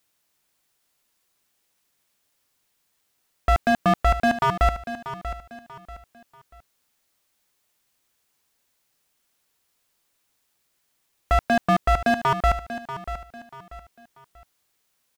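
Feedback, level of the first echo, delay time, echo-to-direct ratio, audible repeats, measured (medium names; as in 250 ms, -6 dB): 33%, -12.0 dB, 638 ms, -11.5 dB, 3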